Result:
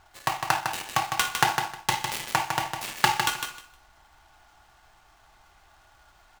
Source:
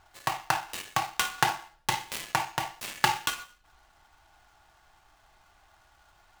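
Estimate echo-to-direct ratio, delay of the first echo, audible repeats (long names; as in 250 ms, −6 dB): −6.0 dB, 155 ms, 3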